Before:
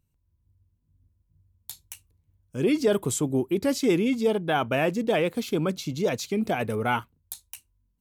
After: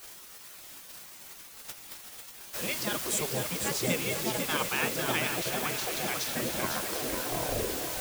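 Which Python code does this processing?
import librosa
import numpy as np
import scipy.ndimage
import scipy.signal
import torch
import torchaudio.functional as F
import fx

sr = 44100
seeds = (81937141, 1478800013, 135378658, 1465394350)

p1 = fx.tape_stop_end(x, sr, length_s=2.04)
p2 = fx.echo_heads(p1, sr, ms=246, heads='all three', feedback_pct=70, wet_db=-16.5)
p3 = fx.dmg_noise_colour(p2, sr, seeds[0], colour='white', level_db=-37.0)
p4 = p3 + fx.echo_single(p3, sr, ms=500, db=-8.0, dry=0)
y = fx.spec_gate(p4, sr, threshold_db=-10, keep='weak')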